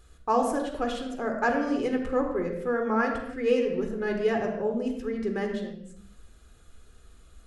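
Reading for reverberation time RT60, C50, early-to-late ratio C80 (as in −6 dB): non-exponential decay, 5.0 dB, 7.0 dB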